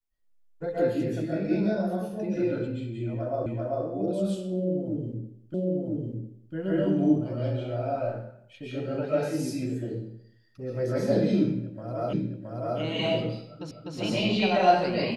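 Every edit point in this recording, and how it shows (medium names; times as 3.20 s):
3.46 s: repeat of the last 0.39 s
5.54 s: repeat of the last 1 s
12.13 s: repeat of the last 0.67 s
13.71 s: repeat of the last 0.25 s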